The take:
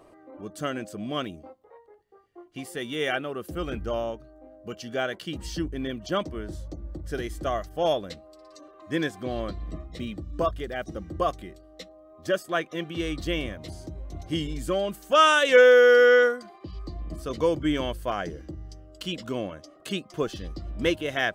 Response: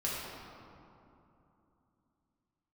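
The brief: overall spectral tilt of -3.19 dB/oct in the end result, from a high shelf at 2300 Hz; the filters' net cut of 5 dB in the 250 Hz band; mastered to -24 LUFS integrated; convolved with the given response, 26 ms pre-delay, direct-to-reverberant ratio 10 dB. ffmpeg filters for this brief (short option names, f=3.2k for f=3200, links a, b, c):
-filter_complex "[0:a]equalizer=f=250:t=o:g=-7,highshelf=f=2.3k:g=-7.5,asplit=2[a][b];[1:a]atrim=start_sample=2205,adelay=26[c];[b][c]afir=irnorm=-1:irlink=0,volume=-15.5dB[d];[a][d]amix=inputs=2:normalize=0,volume=3dB"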